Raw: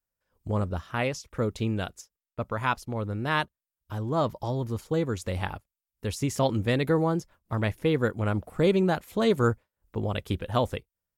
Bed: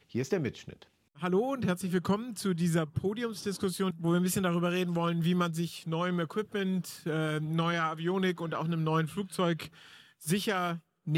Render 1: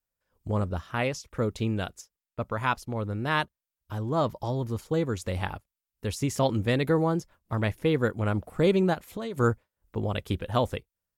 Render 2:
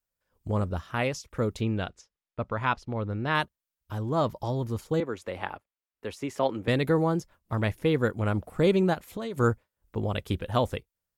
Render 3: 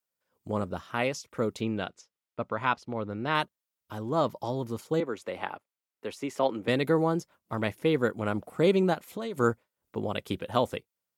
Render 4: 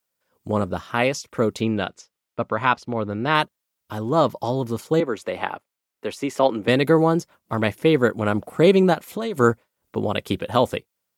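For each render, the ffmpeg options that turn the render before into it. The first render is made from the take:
ffmpeg -i in.wav -filter_complex "[0:a]asplit=3[link_01][link_02][link_03];[link_01]afade=type=out:start_time=8.93:duration=0.02[link_04];[link_02]acompressor=threshold=-30dB:ratio=10:attack=3.2:release=140:knee=1:detection=peak,afade=type=in:start_time=8.93:duration=0.02,afade=type=out:start_time=9.36:duration=0.02[link_05];[link_03]afade=type=in:start_time=9.36:duration=0.02[link_06];[link_04][link_05][link_06]amix=inputs=3:normalize=0" out.wav
ffmpeg -i in.wav -filter_complex "[0:a]asettb=1/sr,asplit=3[link_01][link_02][link_03];[link_01]atrim=end=1.614[link_04];[link_02]atrim=start=1.61:end=3.35,asetpts=PTS-STARTPTS,afade=type=in:duration=0.004:curve=qsin,afade=type=out:start_time=1.736:duration=0.004:curve=qsin,lowpass=4400[link_05];[link_03]atrim=start=3.346[link_06];[link_04][link_05]acrossfade=duration=0.004:curve1=hsin:curve2=qsin[link_07];[link_07][link_06]acrossfade=duration=0.004:curve1=qsin:curve2=hsin,asettb=1/sr,asplit=3[link_08][link_09][link_10];[link_08]atrim=end=5.004[link_11];[link_09]atrim=start=5:end=6.68,asetpts=PTS-STARTPTS,afade=type=in:duration=0.004:curve=qsin,afade=type=out:start_time=1.676:duration=0.004:curve=qsin,acrossover=split=260 3100:gain=0.178 1 0.251[link_12][link_13][link_14];[link_12][link_13][link_14]amix=inputs=3:normalize=0[link_15];[link_10]atrim=start=6.676[link_16];[link_11][link_15]acrossfade=duration=0.004:curve1=hsin:curve2=qsin[link_17];[link_17][link_16]acrossfade=duration=0.004:curve1=qsin:curve2=hsin" out.wav
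ffmpeg -i in.wav -af "highpass=170,bandreject=frequency=1700:width=18" out.wav
ffmpeg -i in.wav -af "volume=8dB,alimiter=limit=-3dB:level=0:latency=1" out.wav

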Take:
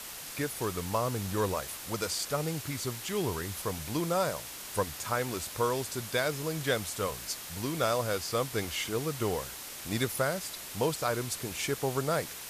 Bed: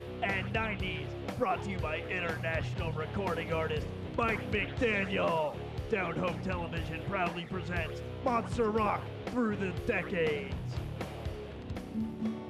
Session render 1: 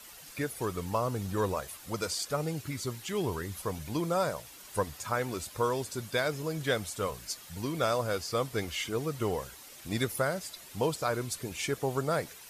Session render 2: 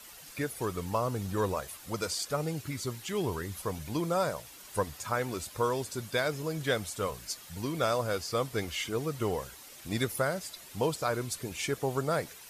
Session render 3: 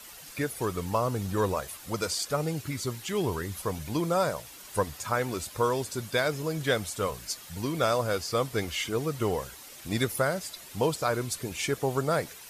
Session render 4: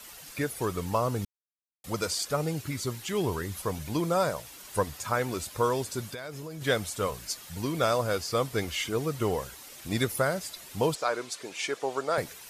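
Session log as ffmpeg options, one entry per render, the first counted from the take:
ffmpeg -i in.wav -af "afftdn=noise_reduction=10:noise_floor=-43" out.wav
ffmpeg -i in.wav -af anull out.wav
ffmpeg -i in.wav -af "volume=3dB" out.wav
ffmpeg -i in.wav -filter_complex "[0:a]asettb=1/sr,asplit=3[link_01][link_02][link_03];[link_01]atrim=end=6.064[link_04];[link_02]atrim=start=6.06:end=6.62,asetpts=PTS-STARTPTS,afade=type=in:duration=0.004:curve=qsin,afade=type=out:start_time=0.556:duration=0.004:curve=qsin,acompressor=threshold=-35dB:ratio=8:attack=3.2:release=140:knee=1:detection=peak[link_05];[link_03]atrim=start=6.616[link_06];[link_04][link_05]acrossfade=duration=0.004:curve1=hsin:curve2=qsin[link_07];[link_07][link_06]acrossfade=duration=0.004:curve1=qsin:curve2=hsin,asettb=1/sr,asplit=3[link_08][link_09][link_10];[link_08]atrim=end=10.954[link_11];[link_09]atrim=start=10.95:end=12.18,asetpts=PTS-STARTPTS,afade=type=in:duration=0.004:curve=qsin,afade=type=out:start_time=1.226:duration=0.004:curve=qsin,highpass=400,lowpass=7100[link_12];[link_10]atrim=start=12.176[link_13];[link_11][link_12]acrossfade=duration=0.004:curve1=hsin:curve2=qsin[link_14];[link_14][link_13]acrossfade=duration=0.004:curve1=qsin:curve2=hsin,asplit=3[link_15][link_16][link_17];[link_15]atrim=end=1.25,asetpts=PTS-STARTPTS,afade=type=out:start_time=1.246:duration=0.004:curve=hsin[link_18];[link_16]atrim=start=1.25:end=1.84,asetpts=PTS-STARTPTS,volume=0[link_19];[link_17]atrim=start=1.84,asetpts=PTS-STARTPTS,afade=type=in:duration=0.004:curve=hsin[link_20];[link_18][link_19][link_20]concat=n=3:v=0:a=1" out.wav

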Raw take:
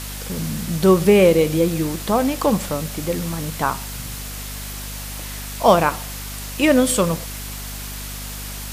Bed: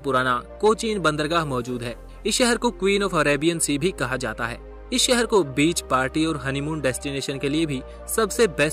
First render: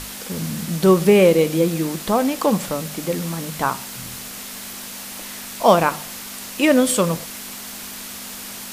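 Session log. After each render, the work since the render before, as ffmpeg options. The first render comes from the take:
ffmpeg -i in.wav -af "bandreject=frequency=50:width_type=h:width=6,bandreject=frequency=100:width_type=h:width=6,bandreject=frequency=150:width_type=h:width=6" out.wav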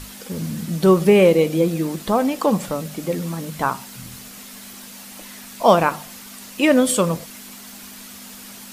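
ffmpeg -i in.wav -af "afftdn=noise_reduction=7:noise_floor=-34" out.wav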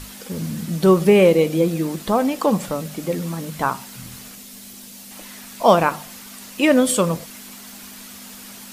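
ffmpeg -i in.wav -filter_complex "[0:a]asettb=1/sr,asplit=3[link_01][link_02][link_03];[link_01]atrim=end=4.354[link_04];[link_02]atrim=start=4.35:end=5.11,asetpts=PTS-STARTPTS,afade=type=in:duration=0.004:curve=qsin,afade=type=out:start_time=0.756:duration=0.004:curve=qsin,equalizer=frequency=1300:width_type=o:width=2.1:gain=-8[link_05];[link_03]atrim=start=5.106[link_06];[link_04][link_05]acrossfade=duration=0.004:curve1=hsin:curve2=qsin[link_07];[link_07][link_06]acrossfade=duration=0.004:curve1=qsin:curve2=hsin" out.wav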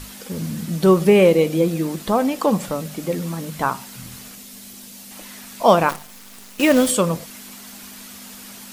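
ffmpeg -i in.wav -filter_complex "[0:a]asplit=3[link_01][link_02][link_03];[link_01]afade=type=out:start_time=5.88:duration=0.02[link_04];[link_02]acrusher=bits=5:dc=4:mix=0:aa=0.000001,afade=type=in:start_time=5.88:duration=0.02,afade=type=out:start_time=6.89:duration=0.02[link_05];[link_03]afade=type=in:start_time=6.89:duration=0.02[link_06];[link_04][link_05][link_06]amix=inputs=3:normalize=0" out.wav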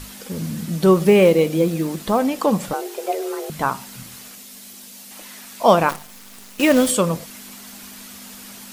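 ffmpeg -i in.wav -filter_complex "[0:a]asettb=1/sr,asplit=3[link_01][link_02][link_03];[link_01]atrim=end=0.954[link_04];[link_02]atrim=start=0.95:end=2.19,asetpts=PTS-STARTPTS,afade=type=in:duration=0.004:curve=qsin,afade=type=out:start_time=1.236:duration=0.004:curve=qsin,acrusher=bits=8:mode=log:mix=0:aa=0.000001[link_05];[link_03]atrim=start=2.186[link_06];[link_04][link_05]acrossfade=duration=0.004:curve1=hsin:curve2=qsin[link_07];[link_07][link_06]acrossfade=duration=0.004:curve1=qsin:curve2=hsin,asettb=1/sr,asplit=3[link_08][link_09][link_10];[link_08]atrim=end=2.734[link_11];[link_09]atrim=start=2.73:end=3.5,asetpts=PTS-STARTPTS,afade=type=in:duration=0.004:curve=qsin,afade=type=out:start_time=0.766:duration=0.004:curve=qsin,afreqshift=200[link_12];[link_10]atrim=start=3.496[link_13];[link_11][link_12]acrossfade=duration=0.004:curve1=hsin:curve2=qsin[link_14];[link_14][link_13]acrossfade=duration=0.004:curve1=qsin:curve2=hsin,asettb=1/sr,asplit=3[link_15][link_16][link_17];[link_15]atrim=end=4.034[link_18];[link_16]atrim=start=4.03:end=5.64,asetpts=PTS-STARTPTS,afade=type=in:duration=0.004:curve=qsin,afade=type=out:start_time=1.606:duration=0.004:curve=qsin,lowshelf=frequency=200:gain=-10[link_19];[link_17]atrim=start=5.636[link_20];[link_18][link_19]acrossfade=duration=0.004:curve1=hsin:curve2=qsin[link_21];[link_21][link_20]acrossfade=duration=0.004:curve1=qsin:curve2=hsin" out.wav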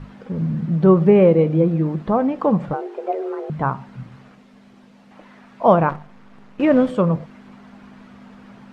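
ffmpeg -i in.wav -af "lowpass=1400,equalizer=frequency=140:width_type=o:width=0.48:gain=10.5" out.wav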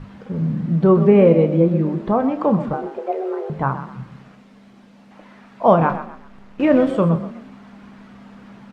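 ffmpeg -i in.wav -filter_complex "[0:a]asplit=2[link_01][link_02];[link_02]adelay=30,volume=-10.5dB[link_03];[link_01][link_03]amix=inputs=2:normalize=0,asplit=4[link_04][link_05][link_06][link_07];[link_05]adelay=127,afreqshift=31,volume=-12dB[link_08];[link_06]adelay=254,afreqshift=62,volume=-21.6dB[link_09];[link_07]adelay=381,afreqshift=93,volume=-31.3dB[link_10];[link_04][link_08][link_09][link_10]amix=inputs=4:normalize=0" out.wav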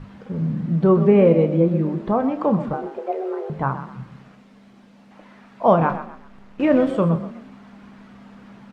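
ffmpeg -i in.wav -af "volume=-2dB" out.wav

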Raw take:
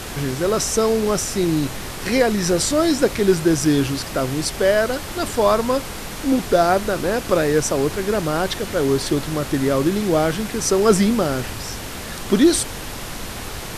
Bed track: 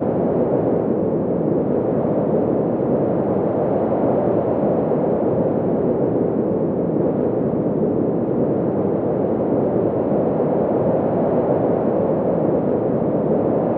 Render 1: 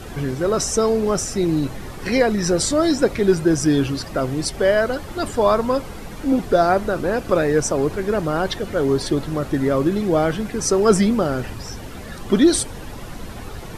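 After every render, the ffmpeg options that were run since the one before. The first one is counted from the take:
ffmpeg -i in.wav -af "afftdn=noise_reduction=11:noise_floor=-31" out.wav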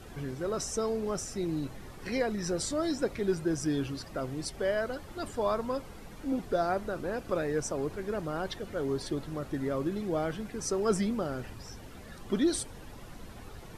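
ffmpeg -i in.wav -af "volume=-13dB" out.wav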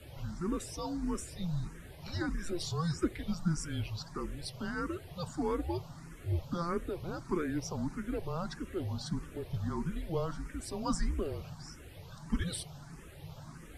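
ffmpeg -i in.wav -filter_complex "[0:a]afreqshift=-170,asplit=2[link_01][link_02];[link_02]afreqshift=1.6[link_03];[link_01][link_03]amix=inputs=2:normalize=1" out.wav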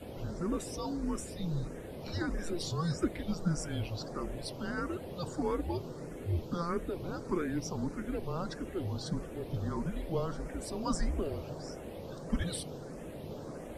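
ffmpeg -i in.wav -i bed.wav -filter_complex "[1:a]volume=-26.5dB[link_01];[0:a][link_01]amix=inputs=2:normalize=0" out.wav

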